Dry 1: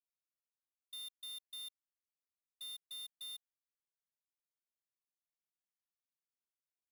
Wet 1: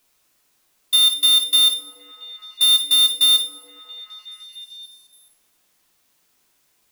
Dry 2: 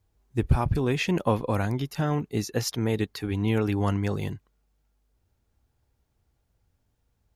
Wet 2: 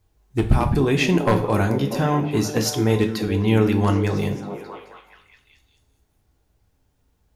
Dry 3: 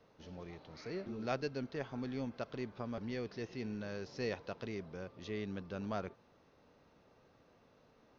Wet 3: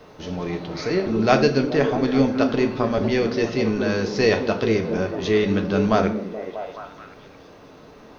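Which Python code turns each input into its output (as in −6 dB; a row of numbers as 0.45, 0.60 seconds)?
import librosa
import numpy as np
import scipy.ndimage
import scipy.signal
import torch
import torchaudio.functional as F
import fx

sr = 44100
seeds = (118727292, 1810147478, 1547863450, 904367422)

y = np.minimum(x, 2.0 * 10.0 ** (-15.5 / 20.0) - x)
y = fx.echo_stepped(y, sr, ms=213, hz=240.0, octaves=0.7, feedback_pct=70, wet_db=-4.0)
y = fx.rev_double_slope(y, sr, seeds[0], early_s=0.4, late_s=1.7, knee_db=-22, drr_db=5.0)
y = y * 10.0 ** (-22 / 20.0) / np.sqrt(np.mean(np.square(y)))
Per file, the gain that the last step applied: +30.0, +5.0, +19.0 decibels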